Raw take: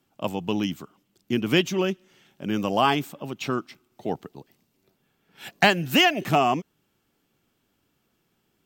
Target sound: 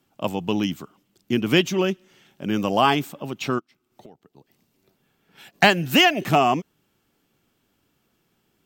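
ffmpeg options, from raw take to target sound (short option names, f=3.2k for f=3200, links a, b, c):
-filter_complex "[0:a]asplit=3[a][b][c];[a]afade=t=out:st=3.58:d=0.02[d];[b]acompressor=threshold=-47dB:ratio=12,afade=t=in:st=3.58:d=0.02,afade=t=out:st=5.53:d=0.02[e];[c]afade=t=in:st=5.53:d=0.02[f];[d][e][f]amix=inputs=3:normalize=0,volume=2.5dB"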